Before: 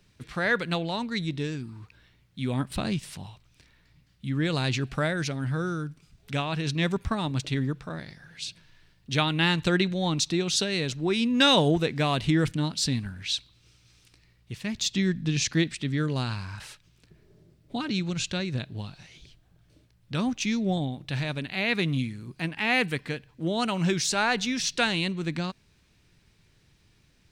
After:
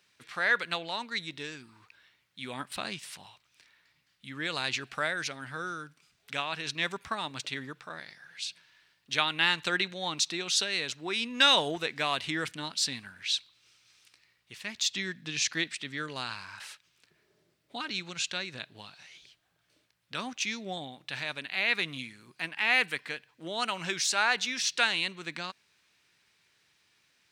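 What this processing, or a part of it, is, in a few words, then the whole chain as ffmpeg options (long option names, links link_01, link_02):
filter by subtraction: -filter_complex "[0:a]asplit=2[link_01][link_02];[link_02]lowpass=1500,volume=-1[link_03];[link_01][link_03]amix=inputs=2:normalize=0,volume=-1.5dB"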